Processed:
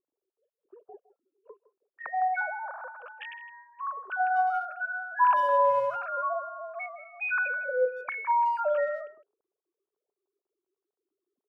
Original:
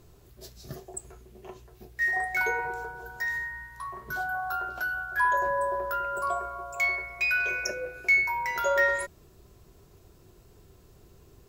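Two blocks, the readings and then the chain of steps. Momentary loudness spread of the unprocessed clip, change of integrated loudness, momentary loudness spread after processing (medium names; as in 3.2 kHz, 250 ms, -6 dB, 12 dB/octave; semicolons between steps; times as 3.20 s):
16 LU, -0.5 dB, 18 LU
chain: formants replaced by sine waves; gate -55 dBFS, range -23 dB; in parallel at +0.5 dB: peak limiter -22.5 dBFS, peak gain reduction 10.5 dB; on the sum: boxcar filter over 22 samples; speakerphone echo 160 ms, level -16 dB; trim +2.5 dB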